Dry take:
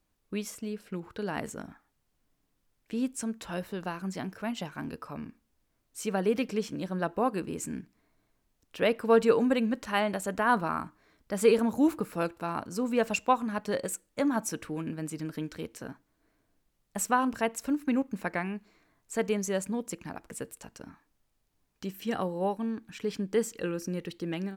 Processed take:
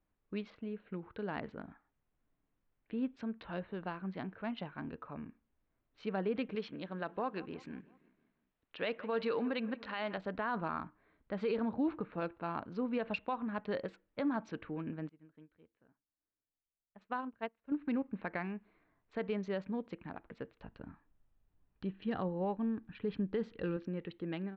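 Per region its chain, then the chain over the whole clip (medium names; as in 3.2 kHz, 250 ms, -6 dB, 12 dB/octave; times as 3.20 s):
6.55–10.18 s: tilt EQ +2 dB/octave + feedback delay 172 ms, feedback 53%, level -21 dB
15.09–17.72 s: low-pass 12 kHz + upward expansion 2.5:1, over -37 dBFS
20.59–23.77 s: bass shelf 150 Hz +10.5 dB + band-stop 2.2 kHz, Q 16
whole clip: local Wiener filter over 9 samples; elliptic low-pass 4.2 kHz, stop band 60 dB; peak limiter -21.5 dBFS; trim -4.5 dB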